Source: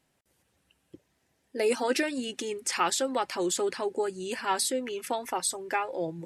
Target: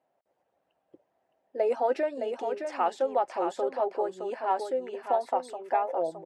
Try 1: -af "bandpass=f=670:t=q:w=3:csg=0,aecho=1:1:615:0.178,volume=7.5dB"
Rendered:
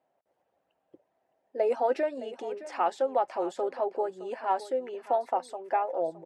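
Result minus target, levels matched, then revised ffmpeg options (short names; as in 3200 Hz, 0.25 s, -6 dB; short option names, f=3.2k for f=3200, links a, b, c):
echo-to-direct -8.5 dB
-af "bandpass=f=670:t=q:w=3:csg=0,aecho=1:1:615:0.473,volume=7.5dB"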